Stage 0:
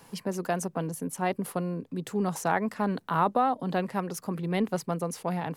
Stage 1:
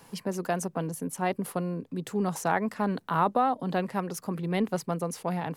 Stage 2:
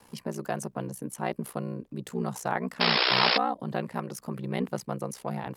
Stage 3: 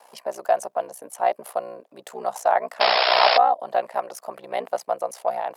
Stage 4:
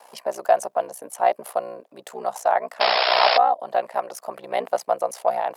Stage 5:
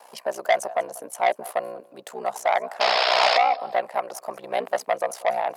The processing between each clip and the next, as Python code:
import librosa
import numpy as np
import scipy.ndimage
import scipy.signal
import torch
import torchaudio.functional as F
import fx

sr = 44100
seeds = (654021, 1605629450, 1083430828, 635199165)

y1 = x
y2 = fx.spec_paint(y1, sr, seeds[0], shape='noise', start_s=2.8, length_s=0.58, low_hz=330.0, high_hz=5400.0, level_db=-21.0)
y2 = y2 * np.sin(2.0 * np.pi * 31.0 * np.arange(len(y2)) / sr)
y3 = fx.highpass_res(y2, sr, hz=660.0, q=4.6)
y3 = y3 * 10.0 ** (2.0 / 20.0)
y4 = fx.rider(y3, sr, range_db=3, speed_s=2.0)
y5 = fx.echo_feedback(y4, sr, ms=190, feedback_pct=25, wet_db=-21)
y5 = fx.transformer_sat(y5, sr, knee_hz=2400.0)